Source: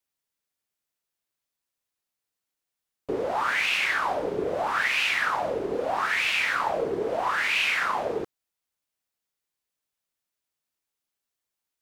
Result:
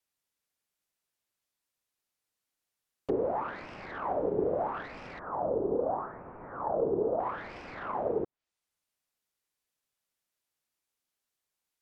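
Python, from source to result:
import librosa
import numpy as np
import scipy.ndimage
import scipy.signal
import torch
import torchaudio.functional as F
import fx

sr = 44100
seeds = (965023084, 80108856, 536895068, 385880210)

y = fx.self_delay(x, sr, depth_ms=0.19)
y = fx.env_lowpass_down(y, sr, base_hz=710.0, full_db=-28.0)
y = fx.lowpass(y, sr, hz=1300.0, slope=24, at=(5.19, 7.2))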